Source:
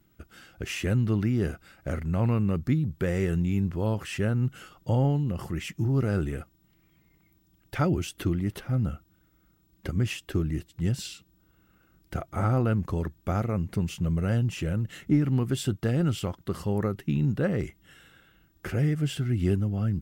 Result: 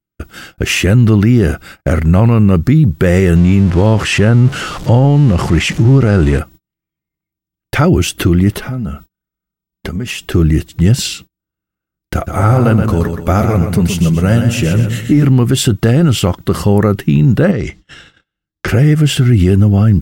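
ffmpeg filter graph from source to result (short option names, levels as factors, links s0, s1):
-filter_complex "[0:a]asettb=1/sr,asplit=3[s0][s1][s2];[s0]atrim=end=3.364[s3];[s1]atrim=start=3.36:end=6.39,asetpts=PTS-STARTPTS,afade=t=in:d=0.004:c=qsin,afade=t=out:st=3.026:d=0.004:c=qsin,aeval=exprs='val(0)+0.5*0.0112*sgn(val(0))':c=same,lowpass=7700[s4];[s2]atrim=start=6.386[s5];[s3][s4]acrossfade=d=0.004:c1=hsin:c2=qsin[s6];[s6][s5]acrossfade=d=0.004:c1=qsin:c2=hsin,asettb=1/sr,asplit=3[s7][s8][s9];[s7]atrim=end=8.574[s10];[s8]atrim=start=8.57:end=10.32,asetpts=PTS-STARTPTS,afade=t=in:d=0.004:c=qsin,afade=t=out:st=1.746:d=0.004:c=qsin,aecho=1:1:4.7:0.47,atrim=end_sample=77175,acompressor=threshold=0.0126:ratio=4:attack=3.2:release=140:knee=1:detection=peak[s11];[s9]atrim=start=10.316[s12];[s10][s11]acrossfade=d=0.004:c1=hsin:c2=qsin[s13];[s13][s12]acrossfade=d=0.004:c1=qsin:c2=hsin,asettb=1/sr,asplit=3[s14][s15][s16];[s14]atrim=end=12.144[s17];[s15]atrim=start=12.14:end=15.25,asetpts=PTS-STARTPTS,afade=t=in:d=0.004:c=qsin,afade=t=out:st=3.106:d=0.004:c=qsin,highshelf=f=5700:g=6.5,flanger=delay=3:depth=4.7:regen=-51:speed=1.7:shape=triangular,aecho=1:1:125|250|375|500|625:0.447|0.183|0.0751|0.0308|0.0126,atrim=end_sample=137151[s18];[s16]atrim=start=15.246[s19];[s17][s18]acrossfade=d=0.004:c1=hsin:c2=qsin[s20];[s20][s19]acrossfade=d=0.004:c1=qsin:c2=hsin,asettb=1/sr,asplit=3[s21][s22][s23];[s21]atrim=end=17.514[s24];[s22]atrim=start=17.51:end=18.68,asetpts=PTS-STARTPTS,afade=t=in:d=0.004:c=qsin,afade=t=out:st=1.166:d=0.004:c=qsin,lowpass=f=5500:t=q:w=1.7,acompressor=threshold=0.0282:ratio=16:attack=3.2:release=140:knee=1:detection=peak[s25];[s23]atrim=start=18.676[s26];[s24][s25]acrossfade=d=0.004:c1=hsin:c2=qsin[s27];[s27][s26]acrossfade=d=0.004:c1=qsin:c2=hsin,agate=range=0.0112:threshold=0.00251:ratio=16:detection=peak,alimiter=level_in=10.6:limit=0.891:release=50:level=0:latency=1,volume=0.891"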